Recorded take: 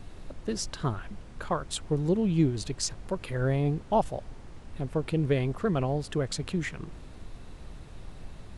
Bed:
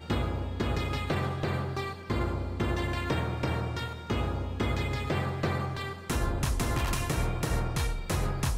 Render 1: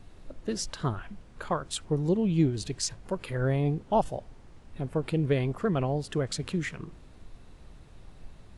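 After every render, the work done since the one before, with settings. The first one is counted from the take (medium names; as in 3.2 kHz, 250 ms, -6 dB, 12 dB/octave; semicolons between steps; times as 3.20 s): noise print and reduce 6 dB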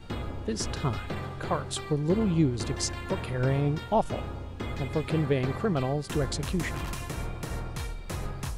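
add bed -5.5 dB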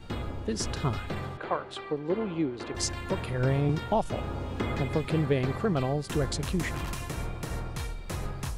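1.37–2.75 s: three-band isolator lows -17 dB, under 260 Hz, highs -19 dB, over 3.6 kHz; 3.69–5.05 s: three bands compressed up and down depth 70%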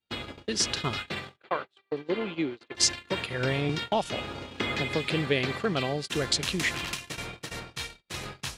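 gate -33 dBFS, range -40 dB; frequency weighting D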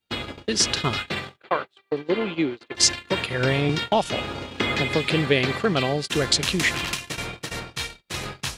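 trim +6 dB; peak limiter -3 dBFS, peak gain reduction 2 dB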